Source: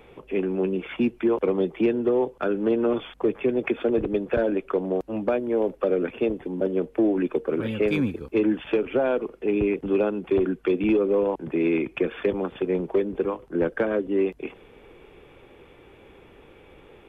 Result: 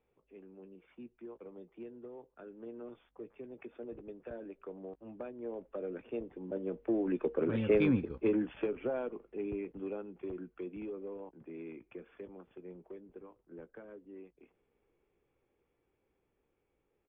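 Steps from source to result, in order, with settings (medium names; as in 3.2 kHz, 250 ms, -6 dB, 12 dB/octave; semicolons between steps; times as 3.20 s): Doppler pass-by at 7.78 s, 5 m/s, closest 2.3 m; distance through air 320 m; doubling 17 ms -13.5 dB; trim -3.5 dB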